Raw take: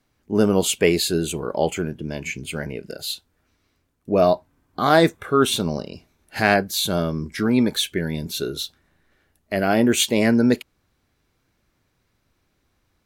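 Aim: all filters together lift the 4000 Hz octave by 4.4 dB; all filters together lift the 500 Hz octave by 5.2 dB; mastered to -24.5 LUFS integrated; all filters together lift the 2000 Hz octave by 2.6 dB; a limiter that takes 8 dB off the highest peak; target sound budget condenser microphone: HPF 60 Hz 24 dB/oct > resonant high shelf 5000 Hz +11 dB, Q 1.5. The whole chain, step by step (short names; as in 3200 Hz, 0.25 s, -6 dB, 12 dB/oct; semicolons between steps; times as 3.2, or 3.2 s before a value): bell 500 Hz +6.5 dB; bell 2000 Hz +3.5 dB; bell 4000 Hz +4.5 dB; limiter -5.5 dBFS; HPF 60 Hz 24 dB/oct; resonant high shelf 5000 Hz +11 dB, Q 1.5; gain -7.5 dB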